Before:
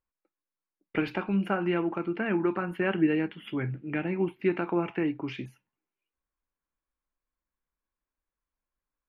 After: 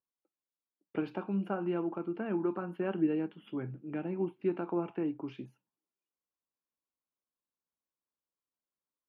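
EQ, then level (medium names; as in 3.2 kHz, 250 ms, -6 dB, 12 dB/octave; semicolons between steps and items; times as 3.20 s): high-pass 150 Hz; peaking EQ 2 kHz -12 dB 0.66 oct; treble shelf 3.2 kHz -11.5 dB; -4.5 dB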